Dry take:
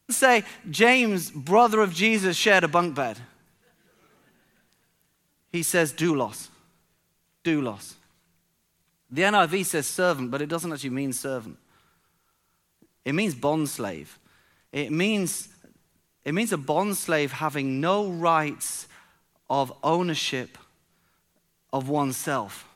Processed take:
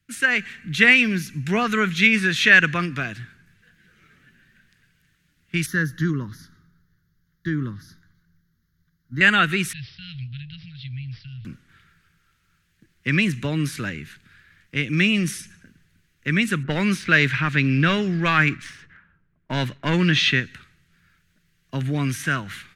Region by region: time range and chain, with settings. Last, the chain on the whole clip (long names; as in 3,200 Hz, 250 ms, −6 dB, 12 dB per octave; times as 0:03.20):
0:05.66–0:09.21: parametric band 3,000 Hz −12.5 dB 1.6 octaves + phaser with its sweep stopped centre 2,500 Hz, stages 6
0:09.73–0:11.45: elliptic band-stop filter 120–3,100 Hz, stop band 60 dB + high-frequency loss of the air 240 metres + bad sample-rate conversion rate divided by 4×, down none, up filtered
0:16.63–0:20.40: low-pass that shuts in the quiet parts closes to 1,000 Hz, open at −19 dBFS + leveller curve on the samples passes 1
whole clip: drawn EQ curve 140 Hz 0 dB, 890 Hz −23 dB, 1,600 Hz +2 dB, 11,000 Hz −15 dB; automatic gain control gain up to 8 dB; level +1.5 dB